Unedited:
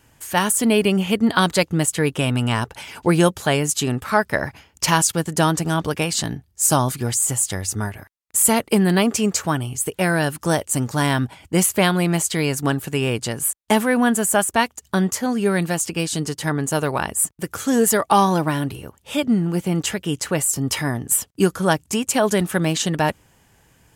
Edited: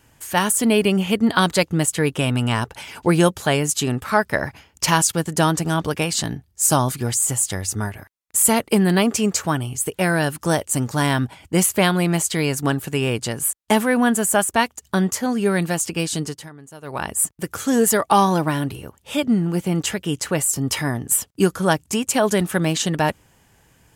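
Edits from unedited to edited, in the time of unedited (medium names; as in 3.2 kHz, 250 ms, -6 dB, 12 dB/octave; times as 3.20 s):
16.08–17.23 s: dip -19.5 dB, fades 0.41 s equal-power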